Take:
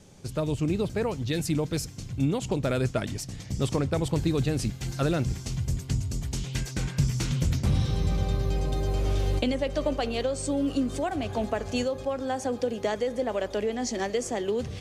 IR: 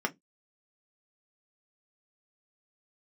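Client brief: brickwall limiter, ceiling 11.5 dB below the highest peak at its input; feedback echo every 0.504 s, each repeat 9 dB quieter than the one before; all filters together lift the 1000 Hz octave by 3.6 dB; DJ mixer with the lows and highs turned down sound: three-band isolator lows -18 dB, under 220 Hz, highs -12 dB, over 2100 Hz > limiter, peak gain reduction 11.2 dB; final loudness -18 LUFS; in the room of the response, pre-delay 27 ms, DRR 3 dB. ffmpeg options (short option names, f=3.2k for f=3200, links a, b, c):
-filter_complex "[0:a]equalizer=f=1k:t=o:g=5.5,alimiter=limit=-23.5dB:level=0:latency=1,aecho=1:1:504|1008|1512|2016:0.355|0.124|0.0435|0.0152,asplit=2[a][b];[1:a]atrim=start_sample=2205,adelay=27[c];[b][c]afir=irnorm=-1:irlink=0,volume=-10.5dB[d];[a][d]amix=inputs=2:normalize=0,acrossover=split=220 2100:gain=0.126 1 0.251[e][f][g];[e][f][g]amix=inputs=3:normalize=0,volume=20.5dB,alimiter=limit=-9.5dB:level=0:latency=1"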